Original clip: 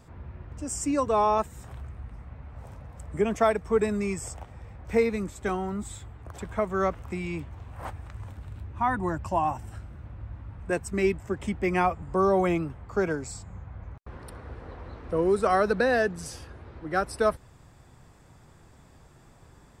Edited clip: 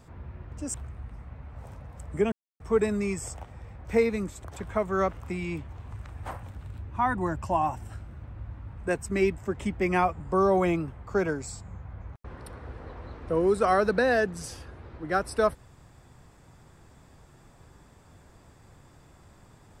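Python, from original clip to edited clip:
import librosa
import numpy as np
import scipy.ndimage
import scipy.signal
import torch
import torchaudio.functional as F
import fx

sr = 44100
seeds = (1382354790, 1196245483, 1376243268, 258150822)

y = fx.edit(x, sr, fx.cut(start_s=0.74, length_s=1.0),
    fx.silence(start_s=3.32, length_s=0.28),
    fx.cut(start_s=5.44, length_s=0.82),
    fx.reverse_span(start_s=7.73, length_s=0.52), tone=tone)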